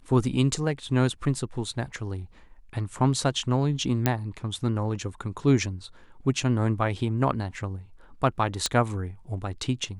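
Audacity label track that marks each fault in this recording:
4.060000	4.060000	pop -7 dBFS
8.660000	8.660000	pop -10 dBFS

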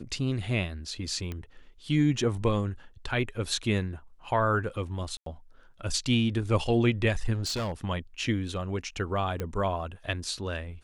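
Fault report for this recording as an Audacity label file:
1.320000	1.320000	pop -22 dBFS
5.170000	5.260000	gap 93 ms
7.330000	7.730000	clipped -27.5 dBFS
9.400000	9.400000	pop -19 dBFS

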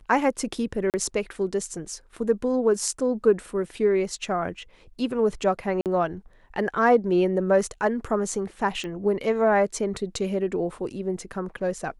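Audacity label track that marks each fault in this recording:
0.900000	0.940000	gap 38 ms
5.810000	5.860000	gap 48 ms
8.840000	8.840000	pop -22 dBFS

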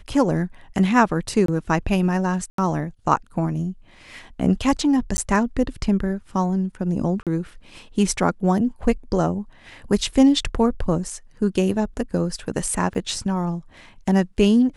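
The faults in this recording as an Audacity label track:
1.460000	1.480000	gap 23 ms
2.500000	2.580000	gap 83 ms
5.170000	5.180000	gap 10 ms
7.230000	7.270000	gap 37 ms
12.940000	12.950000	gap 9.5 ms

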